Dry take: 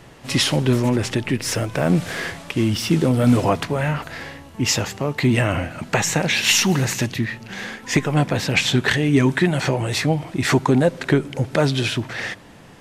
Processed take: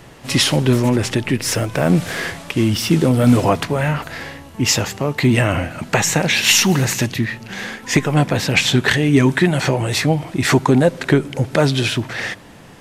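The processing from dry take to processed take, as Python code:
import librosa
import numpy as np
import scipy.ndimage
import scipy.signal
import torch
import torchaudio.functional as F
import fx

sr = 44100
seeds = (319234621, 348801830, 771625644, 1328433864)

y = fx.high_shelf(x, sr, hz=12000.0, db=5.5)
y = y * librosa.db_to_amplitude(3.0)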